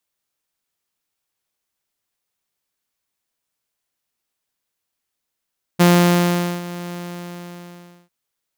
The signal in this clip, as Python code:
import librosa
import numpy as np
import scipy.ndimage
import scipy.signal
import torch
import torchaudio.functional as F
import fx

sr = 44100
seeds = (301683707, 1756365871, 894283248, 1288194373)

y = fx.adsr_tone(sr, wave='saw', hz=175.0, attack_ms=19.0, decay_ms=803.0, sustain_db=-18.5, held_s=1.13, release_ms=1170.0, level_db=-6.5)